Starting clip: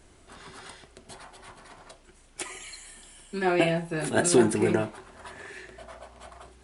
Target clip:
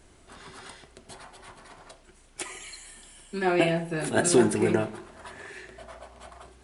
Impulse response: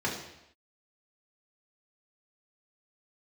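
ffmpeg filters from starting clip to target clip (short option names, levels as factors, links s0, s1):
-filter_complex "[0:a]asplit=2[s0][s1];[1:a]atrim=start_sample=2205,adelay=69[s2];[s1][s2]afir=irnorm=-1:irlink=0,volume=0.0473[s3];[s0][s3]amix=inputs=2:normalize=0"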